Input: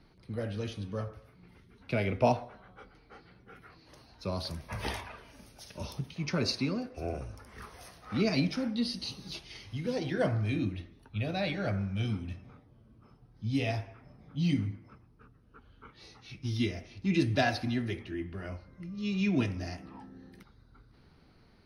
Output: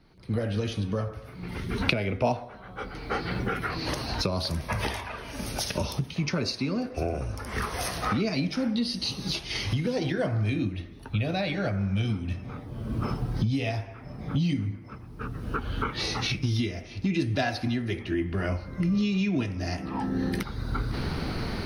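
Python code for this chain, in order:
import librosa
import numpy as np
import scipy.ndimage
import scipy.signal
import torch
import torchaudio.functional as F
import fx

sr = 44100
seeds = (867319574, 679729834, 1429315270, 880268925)

y = fx.recorder_agc(x, sr, target_db=-19.5, rise_db_per_s=32.0, max_gain_db=30)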